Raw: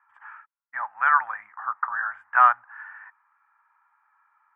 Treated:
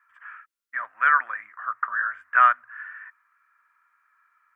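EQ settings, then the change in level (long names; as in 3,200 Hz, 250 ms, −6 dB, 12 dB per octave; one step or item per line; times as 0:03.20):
mains-hum notches 60/120 Hz
phaser with its sweep stopped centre 350 Hz, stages 4
+6.5 dB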